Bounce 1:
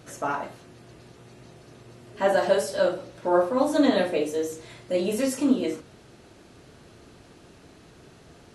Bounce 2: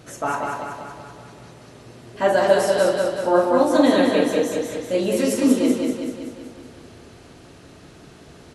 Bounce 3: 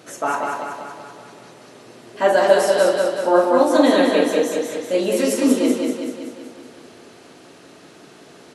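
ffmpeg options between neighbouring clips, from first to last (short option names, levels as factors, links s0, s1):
-af "aecho=1:1:190|380|570|760|950|1140|1330|1520:0.668|0.374|0.21|0.117|0.0657|0.0368|0.0206|0.0115,volume=1.5"
-af "highpass=240,volume=1.33"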